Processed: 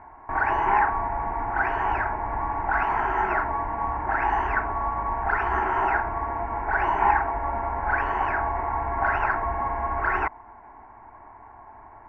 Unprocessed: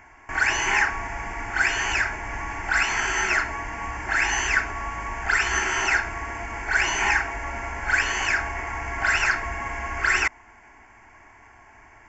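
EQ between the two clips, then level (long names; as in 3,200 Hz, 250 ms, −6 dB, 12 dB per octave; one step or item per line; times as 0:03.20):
low-pass with resonance 940 Hz, resonance Q 2.3
high-frequency loss of the air 79 metres
+1.5 dB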